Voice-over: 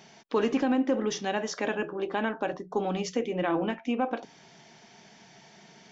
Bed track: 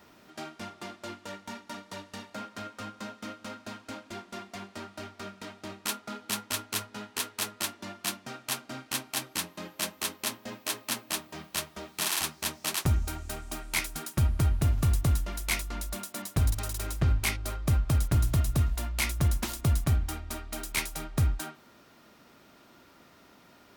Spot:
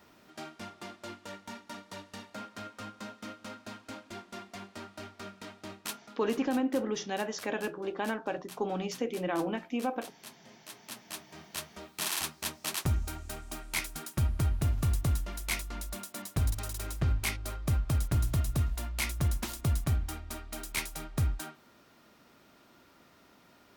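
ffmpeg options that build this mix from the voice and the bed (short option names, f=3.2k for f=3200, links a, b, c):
-filter_complex "[0:a]adelay=5850,volume=-4dB[a];[1:a]volume=10.5dB,afade=t=out:st=5.71:d=0.47:silence=0.199526,afade=t=in:st=10.63:d=1.43:silence=0.211349[b];[a][b]amix=inputs=2:normalize=0"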